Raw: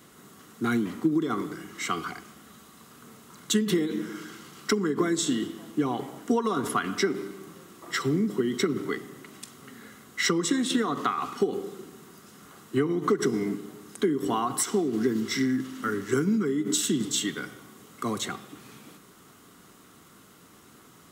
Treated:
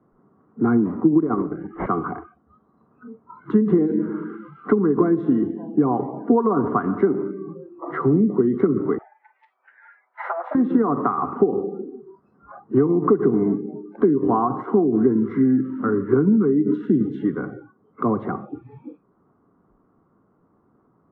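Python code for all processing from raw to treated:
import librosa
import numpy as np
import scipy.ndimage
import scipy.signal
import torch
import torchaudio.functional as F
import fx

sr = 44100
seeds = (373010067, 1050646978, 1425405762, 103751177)

y = fx.chain(x, sr, fx.dynamic_eq(hz=3400.0, q=4.1, threshold_db=-57.0, ratio=4.0, max_db=-6),
    fx.transient(attack_db=3, sustain_db=-6),
    fx.resample_bad(factor=6, down='none', up='filtered'), at=(1.11, 1.86))
y = fx.chain(y, sr, fx.lower_of_two(delay_ms=7.9),
    fx.highpass(hz=740.0, slope=24),
    fx.notch(hz=1100.0, q=11.0), at=(8.98, 10.55))
y = fx.noise_reduce_blind(y, sr, reduce_db=26)
y = scipy.signal.sosfilt(scipy.signal.butter(4, 1100.0, 'lowpass', fs=sr, output='sos'), y)
y = fx.band_squash(y, sr, depth_pct=40)
y = y * librosa.db_to_amplitude(8.5)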